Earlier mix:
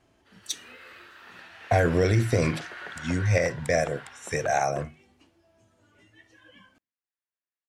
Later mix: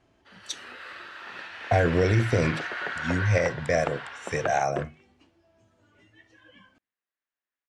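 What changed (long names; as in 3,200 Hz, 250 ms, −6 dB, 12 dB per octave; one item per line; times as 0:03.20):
background +8.0 dB
master: add high-frequency loss of the air 58 metres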